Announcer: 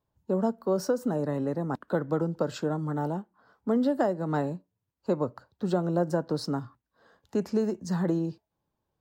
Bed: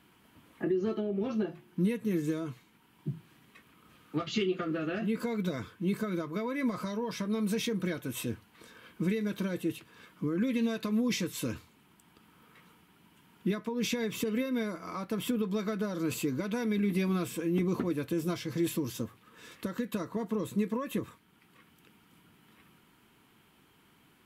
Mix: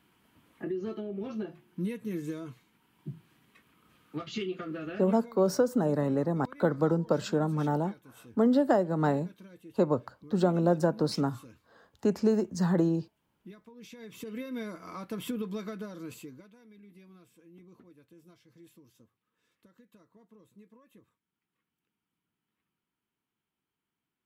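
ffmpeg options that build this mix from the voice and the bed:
-filter_complex "[0:a]adelay=4700,volume=1.5dB[a];[1:a]volume=10dB,afade=t=out:st=4.88:d=0.44:silence=0.211349,afade=t=in:st=13.91:d=0.84:silence=0.188365,afade=t=out:st=15.44:d=1.09:silence=0.0794328[b];[a][b]amix=inputs=2:normalize=0"

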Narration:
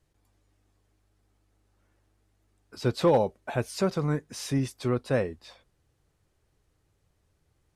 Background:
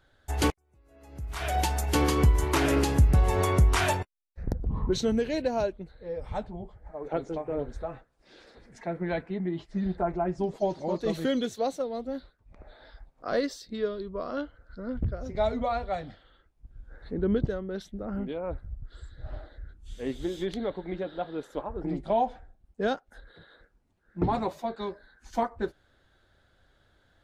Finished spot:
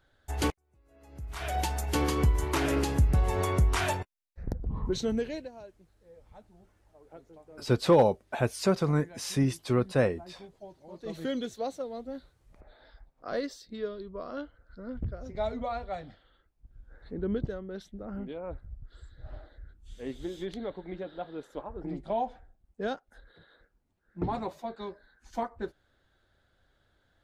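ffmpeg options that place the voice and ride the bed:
-filter_complex "[0:a]adelay=4850,volume=1dB[a];[1:a]volume=11dB,afade=t=out:st=5.22:d=0.29:silence=0.158489,afade=t=in:st=10.89:d=0.4:silence=0.188365[b];[a][b]amix=inputs=2:normalize=0"

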